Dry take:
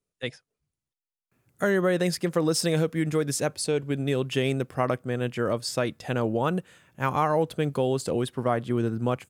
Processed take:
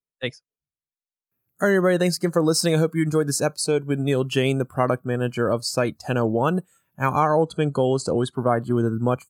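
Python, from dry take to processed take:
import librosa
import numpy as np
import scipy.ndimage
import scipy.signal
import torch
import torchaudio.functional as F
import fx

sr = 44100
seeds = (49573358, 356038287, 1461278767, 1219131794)

y = fx.lowpass(x, sr, hz=9400.0, slope=24, at=(7.19, 8.35))
y = fx.noise_reduce_blind(y, sr, reduce_db=19)
y = y * librosa.db_to_amplitude(4.5)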